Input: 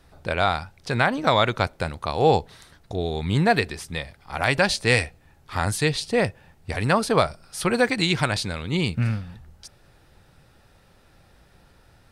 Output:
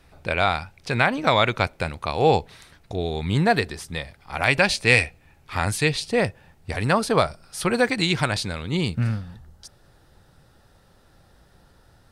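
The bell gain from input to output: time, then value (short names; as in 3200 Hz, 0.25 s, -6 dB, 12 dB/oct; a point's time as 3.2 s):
bell 2400 Hz 0.43 oct
2.98 s +6 dB
3.71 s -4 dB
4.59 s +7 dB
5.7 s +7 dB
6.28 s 0 dB
8.51 s 0 dB
9.17 s -7.5 dB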